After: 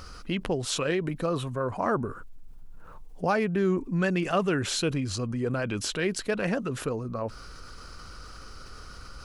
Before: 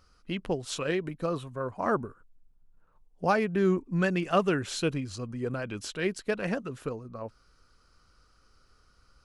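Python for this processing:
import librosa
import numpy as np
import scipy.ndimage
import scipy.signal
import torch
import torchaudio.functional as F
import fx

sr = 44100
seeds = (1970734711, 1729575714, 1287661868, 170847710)

y = fx.env_flatten(x, sr, amount_pct=50)
y = y * librosa.db_to_amplitude(-2.0)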